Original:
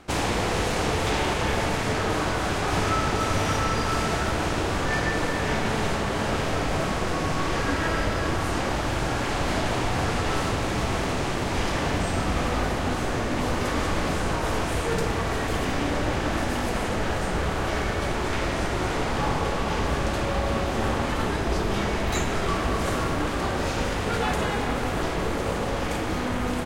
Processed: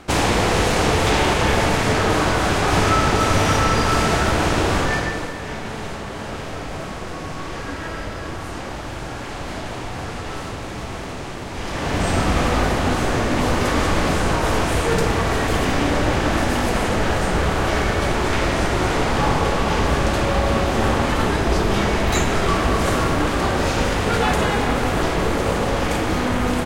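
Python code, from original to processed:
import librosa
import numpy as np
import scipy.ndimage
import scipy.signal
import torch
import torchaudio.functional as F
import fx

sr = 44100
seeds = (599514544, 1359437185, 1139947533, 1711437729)

y = fx.gain(x, sr, db=fx.line((4.78, 7.0), (5.36, -4.0), (11.55, -4.0), (12.09, 6.5)))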